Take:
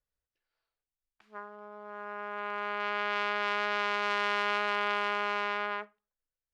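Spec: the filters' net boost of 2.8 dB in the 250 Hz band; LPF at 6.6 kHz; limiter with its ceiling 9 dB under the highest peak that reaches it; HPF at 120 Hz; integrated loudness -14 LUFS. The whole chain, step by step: high-pass 120 Hz; low-pass 6.6 kHz; peaking EQ 250 Hz +4.5 dB; trim +23 dB; peak limiter -1.5 dBFS

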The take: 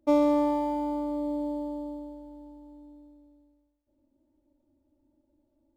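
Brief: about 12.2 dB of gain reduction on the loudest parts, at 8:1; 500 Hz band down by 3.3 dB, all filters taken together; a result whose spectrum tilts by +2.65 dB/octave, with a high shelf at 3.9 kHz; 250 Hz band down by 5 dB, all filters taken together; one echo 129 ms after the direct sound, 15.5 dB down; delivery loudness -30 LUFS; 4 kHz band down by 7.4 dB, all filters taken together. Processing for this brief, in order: peaking EQ 250 Hz -5 dB; peaking EQ 500 Hz -3 dB; treble shelf 3.9 kHz -4 dB; peaking EQ 4 kHz -7 dB; compression 8:1, threshold -34 dBFS; delay 129 ms -15.5 dB; trim +9 dB

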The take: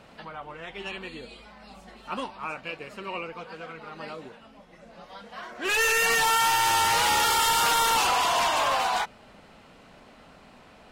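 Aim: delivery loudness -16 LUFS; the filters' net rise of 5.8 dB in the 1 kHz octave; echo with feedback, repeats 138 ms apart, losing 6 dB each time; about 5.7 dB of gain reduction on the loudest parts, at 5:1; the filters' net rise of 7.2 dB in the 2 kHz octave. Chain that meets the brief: peaking EQ 1 kHz +5 dB; peaking EQ 2 kHz +7.5 dB; compression 5:1, threshold -21 dBFS; feedback delay 138 ms, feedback 50%, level -6 dB; trim +7.5 dB

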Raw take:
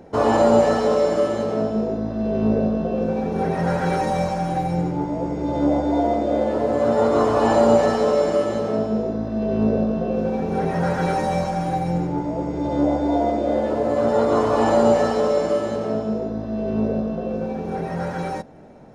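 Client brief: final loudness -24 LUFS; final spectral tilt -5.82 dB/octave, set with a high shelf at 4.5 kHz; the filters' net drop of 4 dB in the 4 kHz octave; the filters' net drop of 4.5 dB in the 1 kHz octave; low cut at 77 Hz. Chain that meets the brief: high-pass 77 Hz; peaking EQ 1 kHz -6.5 dB; peaking EQ 4 kHz -7.5 dB; treble shelf 4.5 kHz +4 dB; trim -1.5 dB

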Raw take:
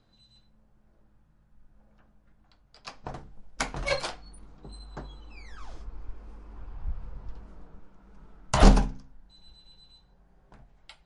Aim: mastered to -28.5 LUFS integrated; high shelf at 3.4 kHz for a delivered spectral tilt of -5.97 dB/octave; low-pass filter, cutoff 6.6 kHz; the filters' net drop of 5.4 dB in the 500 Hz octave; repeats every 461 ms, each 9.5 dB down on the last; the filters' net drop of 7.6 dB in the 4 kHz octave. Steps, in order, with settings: low-pass 6.6 kHz; peaking EQ 500 Hz -6.5 dB; treble shelf 3.4 kHz -8.5 dB; peaking EQ 4 kHz -3 dB; feedback delay 461 ms, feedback 33%, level -9.5 dB; trim +2.5 dB

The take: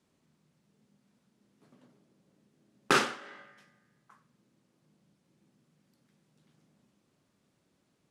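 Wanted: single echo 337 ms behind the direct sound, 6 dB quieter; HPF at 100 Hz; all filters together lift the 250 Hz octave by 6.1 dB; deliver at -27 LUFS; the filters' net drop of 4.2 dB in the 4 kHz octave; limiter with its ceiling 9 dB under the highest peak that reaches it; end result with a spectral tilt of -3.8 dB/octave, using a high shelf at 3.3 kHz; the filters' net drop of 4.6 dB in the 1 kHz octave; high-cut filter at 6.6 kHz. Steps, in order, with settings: high-pass 100 Hz; low-pass 6.6 kHz; peaking EQ 250 Hz +8.5 dB; peaking EQ 1 kHz -7 dB; treble shelf 3.3 kHz +5 dB; peaking EQ 4 kHz -8.5 dB; peak limiter -20.5 dBFS; delay 337 ms -6 dB; trim +9 dB

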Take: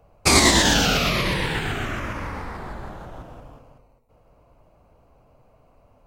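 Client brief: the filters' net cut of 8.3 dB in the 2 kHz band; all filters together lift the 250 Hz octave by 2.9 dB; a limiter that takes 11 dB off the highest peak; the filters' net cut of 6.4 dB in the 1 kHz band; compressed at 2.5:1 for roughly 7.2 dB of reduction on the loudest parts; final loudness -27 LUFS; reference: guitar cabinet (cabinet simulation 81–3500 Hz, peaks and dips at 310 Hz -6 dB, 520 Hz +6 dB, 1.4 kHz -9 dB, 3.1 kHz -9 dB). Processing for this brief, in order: peaking EQ 250 Hz +6.5 dB; peaking EQ 1 kHz -6 dB; peaking EQ 2 kHz -5 dB; compression 2.5:1, threshold -22 dBFS; peak limiter -19.5 dBFS; cabinet simulation 81–3500 Hz, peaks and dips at 310 Hz -6 dB, 520 Hz +6 dB, 1.4 kHz -9 dB, 3.1 kHz -9 dB; trim +6 dB

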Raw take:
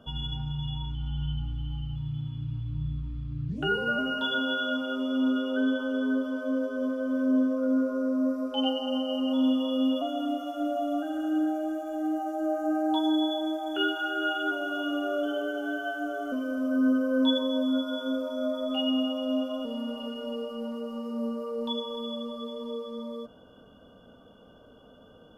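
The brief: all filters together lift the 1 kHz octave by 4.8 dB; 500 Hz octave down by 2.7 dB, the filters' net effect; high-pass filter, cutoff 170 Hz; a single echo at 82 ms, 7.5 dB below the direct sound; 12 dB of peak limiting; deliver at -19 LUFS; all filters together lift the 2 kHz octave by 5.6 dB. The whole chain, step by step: high-pass 170 Hz; peaking EQ 500 Hz -6.5 dB; peaking EQ 1 kHz +8.5 dB; peaking EQ 2 kHz +4 dB; peak limiter -25.5 dBFS; delay 82 ms -7.5 dB; trim +14.5 dB

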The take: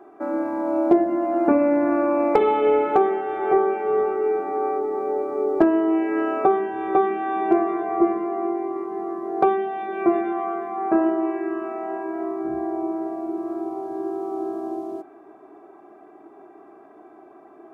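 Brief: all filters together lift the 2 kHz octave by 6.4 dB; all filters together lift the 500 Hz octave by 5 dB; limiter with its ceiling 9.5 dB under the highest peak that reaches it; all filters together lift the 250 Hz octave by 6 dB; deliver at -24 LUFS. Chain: peaking EQ 250 Hz +7 dB; peaking EQ 500 Hz +3.5 dB; peaking EQ 2 kHz +8 dB; trim -4 dB; peak limiter -14 dBFS

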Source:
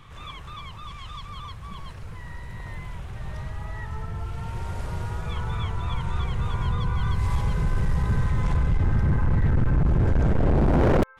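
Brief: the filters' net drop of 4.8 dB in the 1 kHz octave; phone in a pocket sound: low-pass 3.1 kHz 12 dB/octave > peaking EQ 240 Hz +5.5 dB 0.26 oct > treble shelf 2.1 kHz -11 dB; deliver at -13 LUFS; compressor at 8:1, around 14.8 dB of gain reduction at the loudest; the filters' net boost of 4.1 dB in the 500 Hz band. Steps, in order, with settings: peaking EQ 500 Hz +7 dB; peaking EQ 1 kHz -6 dB; compression 8:1, threshold -30 dBFS; low-pass 3.1 kHz 12 dB/octave; peaking EQ 240 Hz +5.5 dB 0.26 oct; treble shelf 2.1 kHz -11 dB; trim +23.5 dB

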